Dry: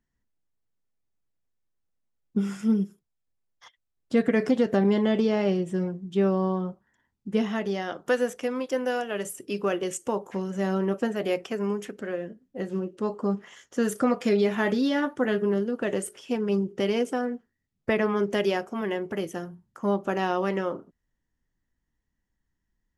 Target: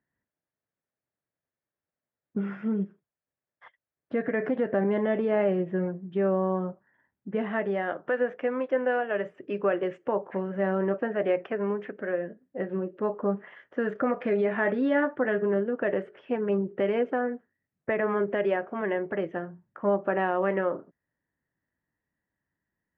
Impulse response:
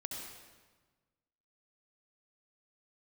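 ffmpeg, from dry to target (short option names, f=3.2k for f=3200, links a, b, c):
-af "alimiter=limit=-17.5dB:level=0:latency=1:release=77,highpass=120,equalizer=f=220:t=q:w=4:g=-4,equalizer=f=600:t=q:w=4:g=6,equalizer=f=1.7k:t=q:w=4:g=5,lowpass=f=2.3k:w=0.5412,lowpass=f=2.3k:w=1.3066"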